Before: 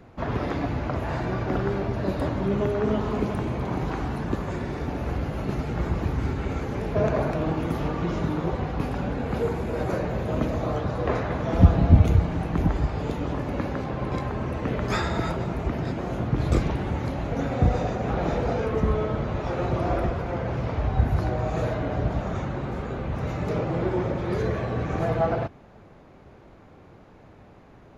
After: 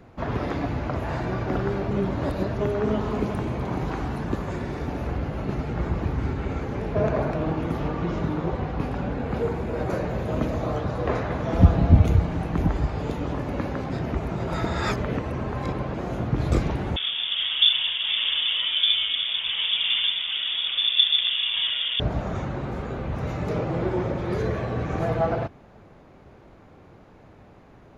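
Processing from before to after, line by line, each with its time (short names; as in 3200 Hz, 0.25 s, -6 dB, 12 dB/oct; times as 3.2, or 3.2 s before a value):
1.91–2.6 reverse
5.07–9.9 high shelf 6100 Hz -8.5 dB
13.9–15.94 reverse
16.96–22 inverted band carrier 3500 Hz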